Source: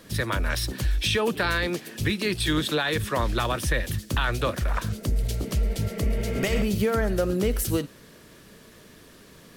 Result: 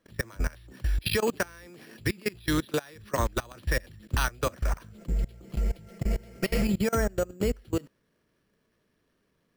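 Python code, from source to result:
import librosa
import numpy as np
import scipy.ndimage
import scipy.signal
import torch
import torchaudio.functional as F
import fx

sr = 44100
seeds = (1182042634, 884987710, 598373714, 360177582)

y = fx.comb(x, sr, ms=5.8, depth=0.58, at=(4.98, 6.95))
y = fx.level_steps(y, sr, step_db=24)
y = np.repeat(scipy.signal.resample_poly(y, 1, 6), 6)[:len(y)]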